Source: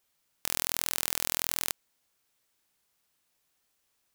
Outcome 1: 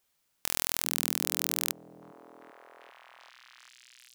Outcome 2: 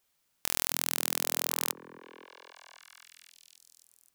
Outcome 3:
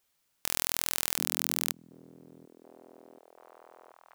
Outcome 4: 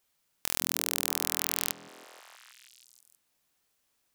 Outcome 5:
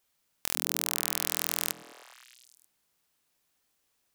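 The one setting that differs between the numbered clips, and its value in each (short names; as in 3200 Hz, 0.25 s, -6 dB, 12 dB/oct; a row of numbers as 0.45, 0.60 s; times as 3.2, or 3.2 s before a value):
delay with a stepping band-pass, time: 0.394, 0.264, 0.733, 0.16, 0.104 s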